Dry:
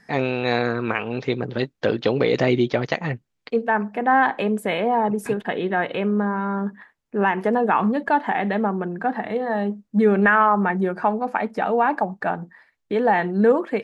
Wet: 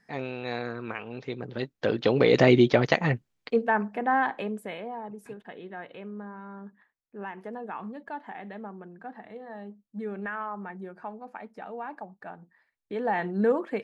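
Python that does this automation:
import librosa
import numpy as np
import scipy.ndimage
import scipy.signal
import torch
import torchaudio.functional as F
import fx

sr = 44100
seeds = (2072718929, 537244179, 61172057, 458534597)

y = fx.gain(x, sr, db=fx.line((1.3, -11.5), (2.4, 1.0), (3.12, 1.0), (4.4, -9.0), (5.01, -18.0), (12.36, -18.0), (13.26, -7.0)))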